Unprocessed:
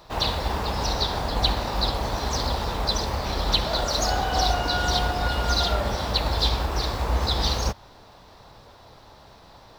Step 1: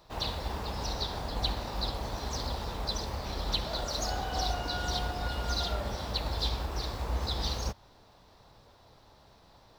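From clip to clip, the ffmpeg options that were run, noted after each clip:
-af "equalizer=f=1.3k:t=o:w=2.8:g=-2.5,volume=-8dB"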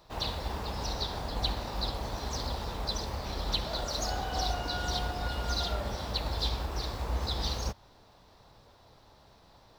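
-af anull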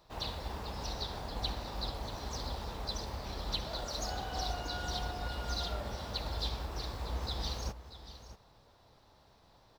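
-af "aecho=1:1:637:0.211,volume=-5dB"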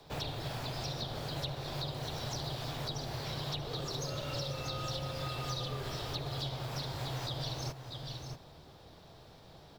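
-filter_complex "[0:a]afreqshift=-190,acrossover=split=370|1200[a][b][c];[a]acompressor=threshold=-48dB:ratio=4[d];[b]acompressor=threshold=-53dB:ratio=4[e];[c]acompressor=threshold=-49dB:ratio=4[f];[d][e][f]amix=inputs=3:normalize=0,volume=8dB"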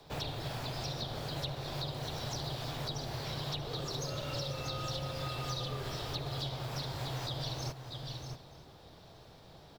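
-af "aecho=1:1:925:0.0708"

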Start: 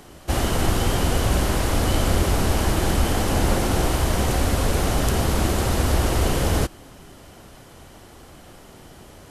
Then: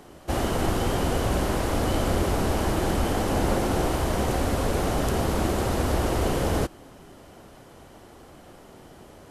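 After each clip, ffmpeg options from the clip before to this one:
-af "equalizer=f=480:w=0.33:g=6.5,volume=-7dB"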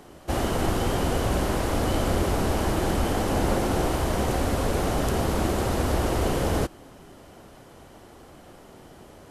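-af anull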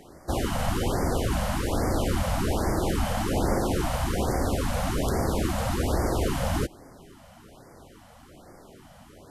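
-af "afftfilt=real='re*(1-between(b*sr/1024,330*pow(3300/330,0.5+0.5*sin(2*PI*1.2*pts/sr))/1.41,330*pow(3300/330,0.5+0.5*sin(2*PI*1.2*pts/sr))*1.41))':imag='im*(1-between(b*sr/1024,330*pow(3300/330,0.5+0.5*sin(2*PI*1.2*pts/sr))/1.41,330*pow(3300/330,0.5+0.5*sin(2*PI*1.2*pts/sr))*1.41))':win_size=1024:overlap=0.75,volume=-1dB"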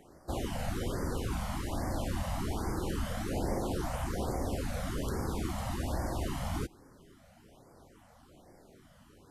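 -af "flanger=delay=0.1:depth=1.1:regen=-47:speed=0.25:shape=triangular,volume=-5dB"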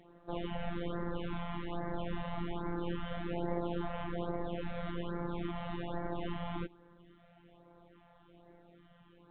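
-af "afftfilt=real='hypot(re,im)*cos(PI*b)':imag='0':win_size=1024:overlap=0.75,volume=1dB" -ar 8000 -c:a pcm_mulaw

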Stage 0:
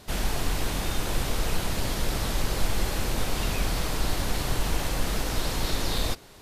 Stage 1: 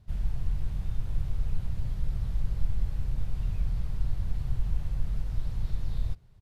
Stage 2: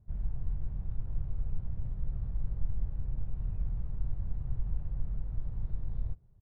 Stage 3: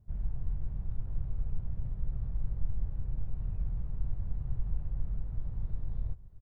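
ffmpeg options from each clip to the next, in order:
-af "firequalizer=gain_entry='entry(120,0);entry(270,-21);entry(6700,-28)':delay=0.05:min_phase=1"
-af "adynamicsmooth=sensitivity=3:basefreq=930,volume=-4.5dB"
-af "aecho=1:1:623:0.126"

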